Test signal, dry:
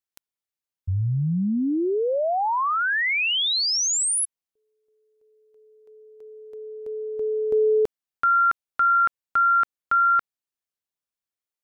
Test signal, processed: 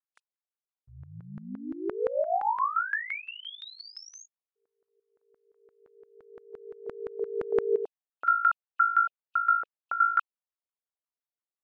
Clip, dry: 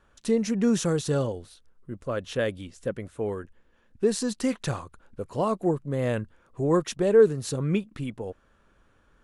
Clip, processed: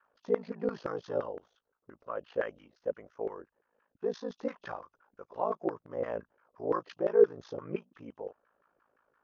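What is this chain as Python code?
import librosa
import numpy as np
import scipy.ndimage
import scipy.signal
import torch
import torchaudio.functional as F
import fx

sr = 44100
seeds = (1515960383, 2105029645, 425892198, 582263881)

y = fx.freq_compress(x, sr, knee_hz=2500.0, ratio=1.5)
y = fx.filter_lfo_bandpass(y, sr, shape='saw_down', hz=5.8, low_hz=450.0, high_hz=1500.0, q=2.1)
y = y * np.sin(2.0 * np.pi * 27.0 * np.arange(len(y)) / sr)
y = F.gain(torch.from_numpy(y), 2.0).numpy()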